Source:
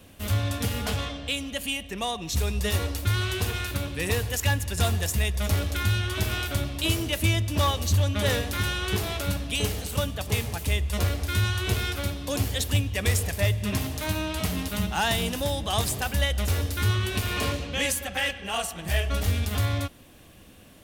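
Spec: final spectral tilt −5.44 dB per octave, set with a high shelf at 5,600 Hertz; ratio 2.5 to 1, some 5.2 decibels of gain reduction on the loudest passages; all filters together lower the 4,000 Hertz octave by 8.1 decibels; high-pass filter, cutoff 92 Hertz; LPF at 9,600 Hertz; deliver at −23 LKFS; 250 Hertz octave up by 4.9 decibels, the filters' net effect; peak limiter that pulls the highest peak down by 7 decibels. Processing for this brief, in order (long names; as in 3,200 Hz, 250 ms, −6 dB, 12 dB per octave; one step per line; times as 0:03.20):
high-pass filter 92 Hz
low-pass filter 9,600 Hz
parametric band 250 Hz +6.5 dB
parametric band 4,000 Hz −9 dB
high-shelf EQ 5,600 Hz −6.5 dB
downward compressor 2.5 to 1, threshold −28 dBFS
level +9.5 dB
brickwall limiter −13 dBFS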